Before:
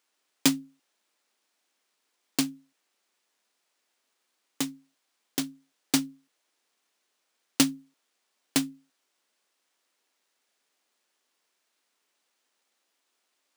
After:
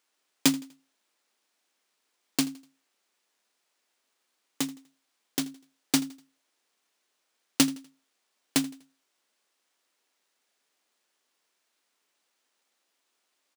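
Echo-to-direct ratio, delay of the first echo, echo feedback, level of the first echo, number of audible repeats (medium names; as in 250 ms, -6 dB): -20.0 dB, 82 ms, 37%, -20.5 dB, 2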